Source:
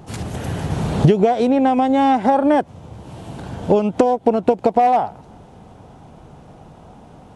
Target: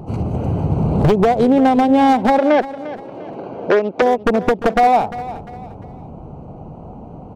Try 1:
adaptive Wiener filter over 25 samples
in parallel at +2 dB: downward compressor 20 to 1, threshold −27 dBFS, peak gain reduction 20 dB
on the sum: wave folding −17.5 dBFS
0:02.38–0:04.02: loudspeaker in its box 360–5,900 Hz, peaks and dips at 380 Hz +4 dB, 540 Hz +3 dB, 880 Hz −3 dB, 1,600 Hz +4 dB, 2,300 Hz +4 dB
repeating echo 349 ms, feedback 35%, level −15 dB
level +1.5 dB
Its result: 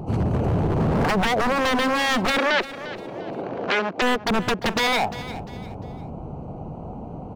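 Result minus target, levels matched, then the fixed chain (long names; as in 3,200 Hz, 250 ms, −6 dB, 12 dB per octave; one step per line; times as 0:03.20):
wave folding: distortion +20 dB
adaptive Wiener filter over 25 samples
in parallel at +2 dB: downward compressor 20 to 1, threshold −27 dBFS, peak gain reduction 20 dB
on the sum: wave folding −8 dBFS
0:02.38–0:04.02: loudspeaker in its box 360–5,900 Hz, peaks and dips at 380 Hz +4 dB, 540 Hz +3 dB, 880 Hz −3 dB, 1,600 Hz +4 dB, 2,300 Hz +4 dB
repeating echo 349 ms, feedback 35%, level −15 dB
level +1.5 dB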